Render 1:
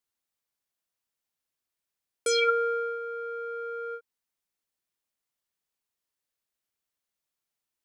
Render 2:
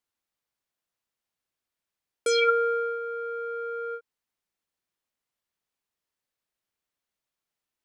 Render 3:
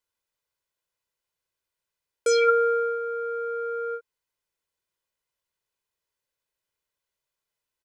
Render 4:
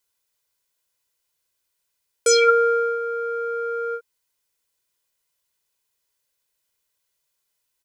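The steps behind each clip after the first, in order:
treble shelf 5.1 kHz -7 dB; trim +2.5 dB
comb 2 ms, depth 53%
treble shelf 3.6 kHz +10 dB; trim +3 dB

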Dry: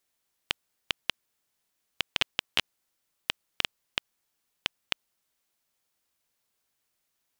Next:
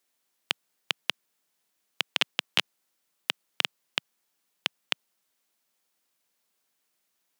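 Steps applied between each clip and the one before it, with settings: high-pass 150 Hz 24 dB/octave; trim +2 dB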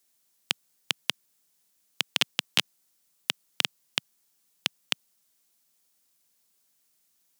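tone controls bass +8 dB, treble +9 dB; trim -1.5 dB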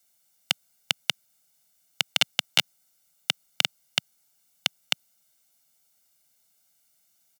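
comb 1.4 ms, depth 89%

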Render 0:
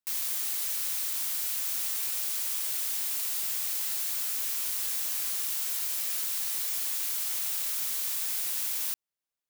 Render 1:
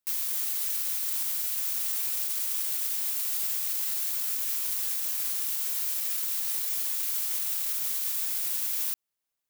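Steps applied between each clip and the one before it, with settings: treble shelf 11 kHz +4.5 dB; peak limiter -23 dBFS, peak gain reduction 7.5 dB; trim +3 dB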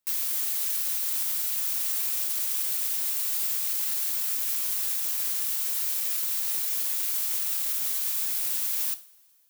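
in parallel at -9.5 dB: hard clipper -33 dBFS, distortion -7 dB; on the sum: two-slope reverb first 0.39 s, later 2.4 s, from -21 dB, DRR 11 dB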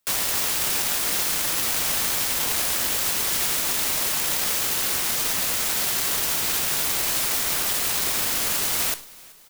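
tracing distortion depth 0.47 ms; feedback delay 380 ms, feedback 53%, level -24 dB; trim +7.5 dB

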